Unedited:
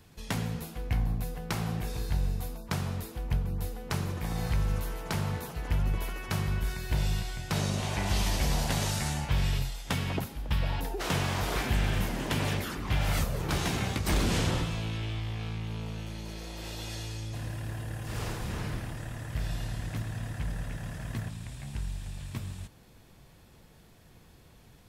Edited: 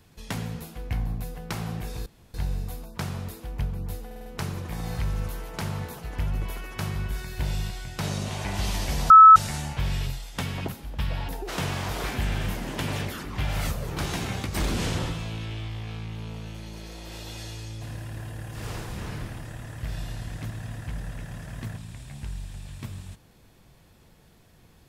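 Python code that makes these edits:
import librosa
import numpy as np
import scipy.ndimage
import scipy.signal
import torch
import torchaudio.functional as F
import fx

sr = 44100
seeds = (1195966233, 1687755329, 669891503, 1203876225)

y = fx.edit(x, sr, fx.insert_room_tone(at_s=2.06, length_s=0.28),
    fx.stutter(start_s=3.78, slice_s=0.05, count=5),
    fx.bleep(start_s=8.62, length_s=0.26, hz=1300.0, db=-6.0), tone=tone)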